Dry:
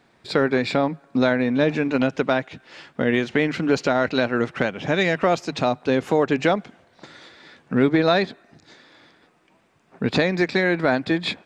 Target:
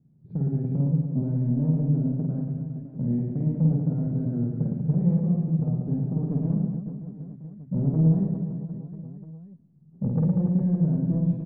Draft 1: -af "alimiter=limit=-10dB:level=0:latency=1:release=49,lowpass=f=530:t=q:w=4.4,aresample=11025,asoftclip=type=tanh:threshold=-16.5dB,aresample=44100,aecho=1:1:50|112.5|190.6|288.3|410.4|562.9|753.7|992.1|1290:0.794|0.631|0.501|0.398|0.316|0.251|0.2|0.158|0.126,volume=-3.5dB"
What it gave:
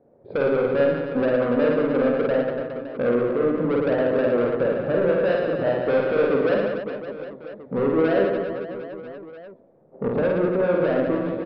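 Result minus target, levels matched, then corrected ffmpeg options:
500 Hz band +17.0 dB
-af "alimiter=limit=-10dB:level=0:latency=1:release=49,lowpass=f=160:t=q:w=4.4,aresample=11025,asoftclip=type=tanh:threshold=-16.5dB,aresample=44100,aecho=1:1:50|112.5|190.6|288.3|410.4|562.9|753.7|992.1|1290:0.794|0.631|0.501|0.398|0.316|0.251|0.2|0.158|0.126,volume=-3.5dB"

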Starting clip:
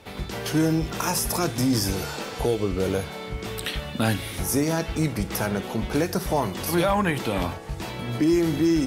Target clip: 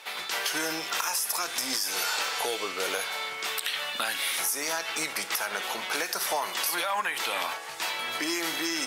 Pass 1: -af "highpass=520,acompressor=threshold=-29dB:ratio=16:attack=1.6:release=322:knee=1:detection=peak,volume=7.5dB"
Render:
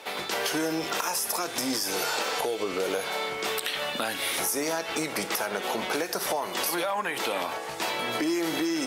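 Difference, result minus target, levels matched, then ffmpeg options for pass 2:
500 Hz band +6.5 dB
-af "highpass=1.1k,acompressor=threshold=-29dB:ratio=16:attack=1.6:release=322:knee=1:detection=peak,volume=7.5dB"

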